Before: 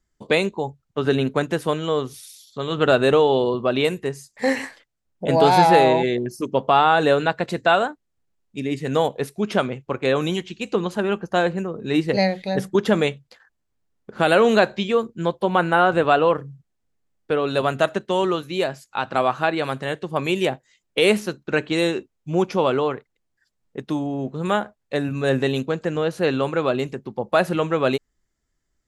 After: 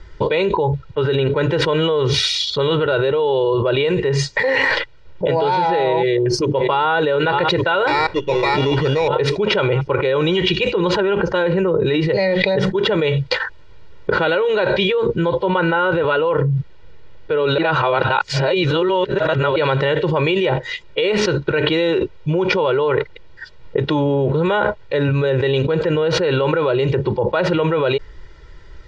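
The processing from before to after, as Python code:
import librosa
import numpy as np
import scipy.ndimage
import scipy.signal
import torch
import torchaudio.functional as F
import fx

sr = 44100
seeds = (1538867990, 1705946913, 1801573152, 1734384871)

y = fx.echo_throw(x, sr, start_s=5.97, length_s=0.93, ms=580, feedback_pct=60, wet_db=-17.0)
y = fx.sample_hold(y, sr, seeds[0], rate_hz=3100.0, jitter_pct=0, at=(7.87, 9.08))
y = fx.high_shelf(y, sr, hz=8500.0, db=9.0, at=(13.09, 14.37))
y = fx.edit(y, sr, fx.reverse_span(start_s=17.58, length_s=1.98), tone=tone)
y = scipy.signal.sosfilt(scipy.signal.butter(4, 4100.0, 'lowpass', fs=sr, output='sos'), y)
y = y + 0.98 * np.pad(y, (int(2.1 * sr / 1000.0), 0))[:len(y)]
y = fx.env_flatten(y, sr, amount_pct=100)
y = y * librosa.db_to_amplitude(-9.5)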